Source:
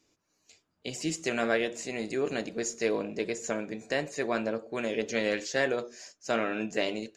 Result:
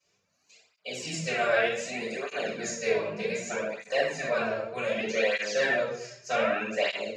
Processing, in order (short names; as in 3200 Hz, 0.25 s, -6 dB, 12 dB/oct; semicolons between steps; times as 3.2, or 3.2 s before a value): HPF 220 Hz 6 dB/oct; bell 310 Hz -14.5 dB 0.5 oct; reverb RT60 0.75 s, pre-delay 4 ms, DRR -11 dB; tape flanging out of phase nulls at 0.65 Hz, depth 4.3 ms; gain -8 dB